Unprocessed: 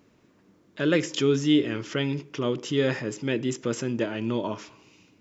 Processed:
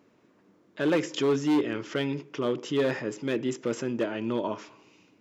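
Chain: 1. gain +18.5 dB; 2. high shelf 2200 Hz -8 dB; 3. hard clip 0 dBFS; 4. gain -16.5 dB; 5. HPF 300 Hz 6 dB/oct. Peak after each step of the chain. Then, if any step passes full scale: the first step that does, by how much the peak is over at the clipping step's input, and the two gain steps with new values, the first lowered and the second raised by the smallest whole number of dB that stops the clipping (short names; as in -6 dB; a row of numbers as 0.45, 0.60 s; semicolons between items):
+9.5, +8.5, 0.0, -16.5, -14.0 dBFS; step 1, 8.5 dB; step 1 +9.5 dB, step 4 -7.5 dB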